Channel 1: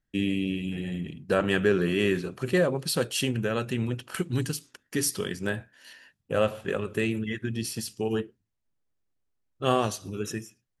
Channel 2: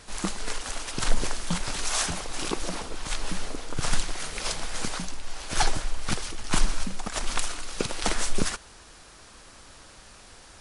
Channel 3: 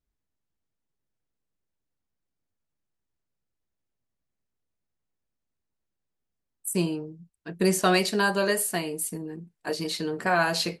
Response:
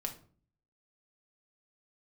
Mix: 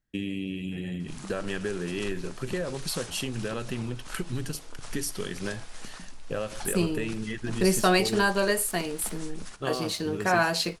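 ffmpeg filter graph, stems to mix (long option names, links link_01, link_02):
-filter_complex "[0:a]acompressor=threshold=-28dB:ratio=5,volume=-0.5dB[link_01];[1:a]acompressor=threshold=-31dB:ratio=2,adelay=1000,volume=-12dB,asplit=2[link_02][link_03];[link_03]volume=-6.5dB[link_04];[2:a]aeval=exprs='sgn(val(0))*max(abs(val(0))-0.00299,0)':channel_layout=same,volume=0dB[link_05];[3:a]atrim=start_sample=2205[link_06];[link_04][link_06]afir=irnorm=-1:irlink=0[link_07];[link_01][link_02][link_05][link_07]amix=inputs=4:normalize=0"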